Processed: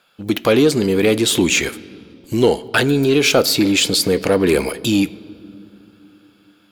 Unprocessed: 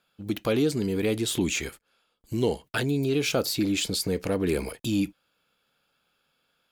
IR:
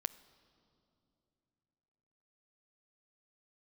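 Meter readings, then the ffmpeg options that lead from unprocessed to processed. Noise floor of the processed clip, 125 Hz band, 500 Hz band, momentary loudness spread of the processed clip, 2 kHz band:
-54 dBFS, +7.0 dB, +11.5 dB, 7 LU, +13.0 dB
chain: -filter_complex "[0:a]lowshelf=f=200:g=-10.5,aeval=exprs='0.211*(cos(1*acos(clip(val(0)/0.211,-1,1)))-cos(1*PI/2))+0.00944*(cos(5*acos(clip(val(0)/0.211,-1,1)))-cos(5*PI/2))':c=same,asplit=2[s0][s1];[1:a]atrim=start_sample=2205,highshelf=f=6500:g=-5.5[s2];[s1][s2]afir=irnorm=-1:irlink=0,volume=4.22[s3];[s0][s3]amix=inputs=2:normalize=0,volume=0.891"

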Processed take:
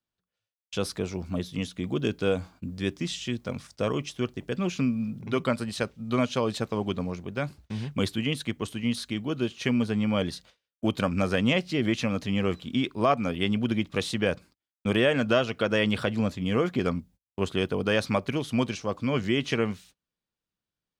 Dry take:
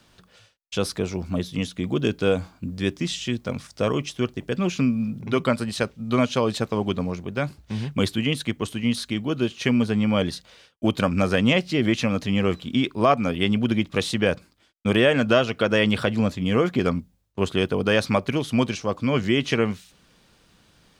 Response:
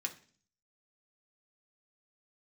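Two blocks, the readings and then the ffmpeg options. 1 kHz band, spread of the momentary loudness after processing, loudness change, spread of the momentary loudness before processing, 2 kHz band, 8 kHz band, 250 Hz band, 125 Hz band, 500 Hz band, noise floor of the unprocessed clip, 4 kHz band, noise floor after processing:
-4.5 dB, 8 LU, -4.5 dB, 8 LU, -4.5 dB, -4.5 dB, -4.5 dB, -4.5 dB, -4.5 dB, -60 dBFS, -4.5 dB, under -85 dBFS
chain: -af "agate=range=0.0355:threshold=0.00501:ratio=16:detection=peak,volume=0.596"

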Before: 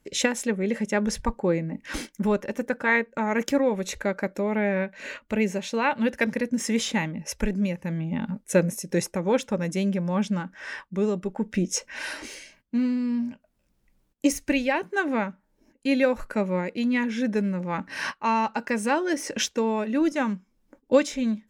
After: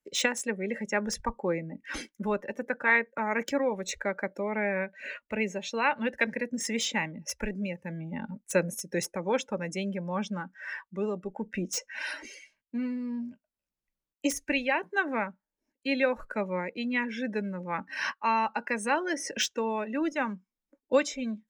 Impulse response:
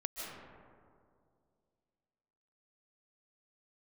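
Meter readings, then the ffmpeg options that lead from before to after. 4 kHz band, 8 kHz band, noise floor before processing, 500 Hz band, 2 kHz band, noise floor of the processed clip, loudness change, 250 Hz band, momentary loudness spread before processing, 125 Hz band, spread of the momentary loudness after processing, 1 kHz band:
-2.0 dB, -3.0 dB, -69 dBFS, -5.0 dB, -1.0 dB, under -85 dBFS, -4.5 dB, -8.0 dB, 8 LU, -8.5 dB, 10 LU, -2.5 dB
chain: -filter_complex "[0:a]afftdn=nr=16:nf=-39,lowshelf=f=490:g=-10,acrossover=split=150|490|5000[s0][s1][s2][s3];[s3]aeval=exprs='0.0335*(abs(mod(val(0)/0.0335+3,4)-2)-1)':c=same[s4];[s0][s1][s2][s4]amix=inputs=4:normalize=0"

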